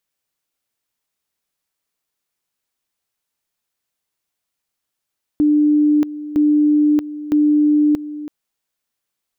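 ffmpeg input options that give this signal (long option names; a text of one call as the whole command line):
ffmpeg -f lavfi -i "aevalsrc='pow(10,(-10.5-15*gte(mod(t,0.96),0.63))/20)*sin(2*PI*298*t)':duration=2.88:sample_rate=44100" out.wav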